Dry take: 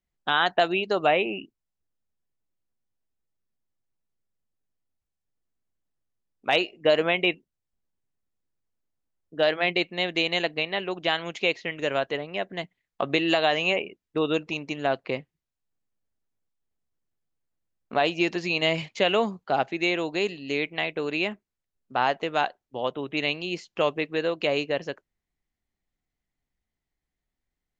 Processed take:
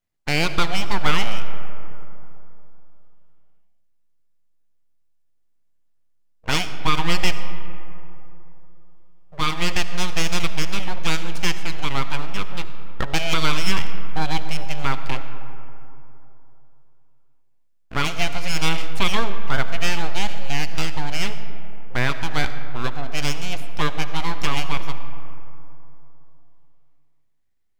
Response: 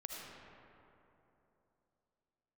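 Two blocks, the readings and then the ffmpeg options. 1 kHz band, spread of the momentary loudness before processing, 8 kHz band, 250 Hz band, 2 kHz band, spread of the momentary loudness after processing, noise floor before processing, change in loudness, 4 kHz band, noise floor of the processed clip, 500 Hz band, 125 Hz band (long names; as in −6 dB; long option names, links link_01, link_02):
+1.0 dB, 10 LU, can't be measured, 0.0 dB, +1.0 dB, 15 LU, below −85 dBFS, 0.0 dB, +2.5 dB, −59 dBFS, −7.5 dB, +11.5 dB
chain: -filter_complex "[0:a]aeval=exprs='abs(val(0))':channel_layout=same,asplit=2[link_01][link_02];[1:a]atrim=start_sample=2205[link_03];[link_02][link_03]afir=irnorm=-1:irlink=0,volume=-4dB[link_04];[link_01][link_04]amix=inputs=2:normalize=0,volume=1dB"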